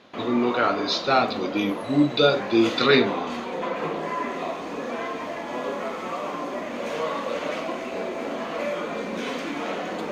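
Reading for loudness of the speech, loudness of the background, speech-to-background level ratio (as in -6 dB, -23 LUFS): -22.0 LUFS, -30.0 LUFS, 8.0 dB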